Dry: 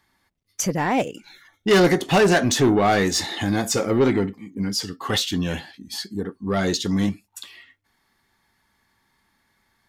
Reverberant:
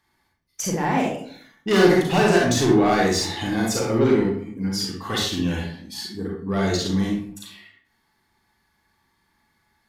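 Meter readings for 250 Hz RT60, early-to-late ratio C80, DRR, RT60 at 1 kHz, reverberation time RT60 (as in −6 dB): 0.75 s, 7.0 dB, −2.5 dB, 0.55 s, 0.55 s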